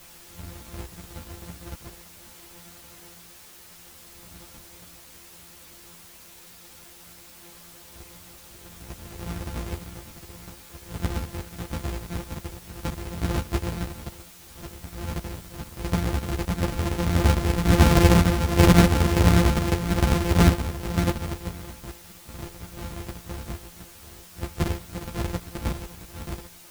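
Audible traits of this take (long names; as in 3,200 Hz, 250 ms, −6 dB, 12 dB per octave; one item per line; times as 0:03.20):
a buzz of ramps at a fixed pitch in blocks of 256 samples
sample-and-hold tremolo
a quantiser's noise floor 8 bits, dither triangular
a shimmering, thickened sound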